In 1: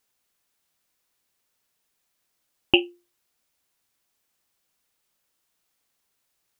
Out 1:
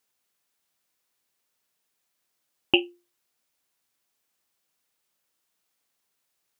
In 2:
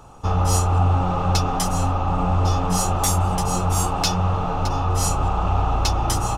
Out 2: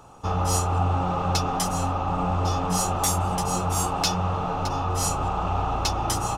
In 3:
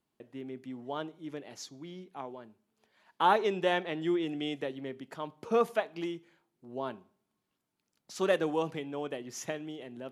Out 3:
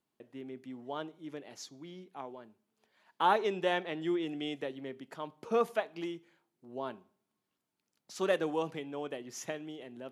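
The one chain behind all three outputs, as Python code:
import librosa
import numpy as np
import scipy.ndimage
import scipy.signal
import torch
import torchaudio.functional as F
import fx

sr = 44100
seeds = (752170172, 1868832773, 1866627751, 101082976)

y = fx.low_shelf(x, sr, hz=74.0, db=-10.5)
y = y * 10.0 ** (-2.0 / 20.0)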